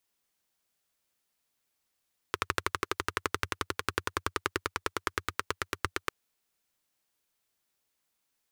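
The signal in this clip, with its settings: single-cylinder engine model, changing speed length 3.75 s, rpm 1500, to 1000, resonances 92/390/1200 Hz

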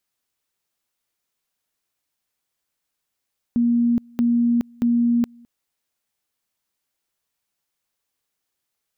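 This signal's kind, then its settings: two-level tone 237 Hz -15 dBFS, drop 29 dB, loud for 0.42 s, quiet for 0.21 s, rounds 3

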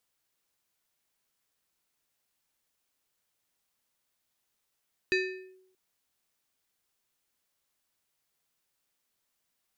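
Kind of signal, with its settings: FM tone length 0.63 s, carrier 374 Hz, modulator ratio 5.78, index 1.3, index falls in 0.45 s linear, decay 0.77 s, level -21 dB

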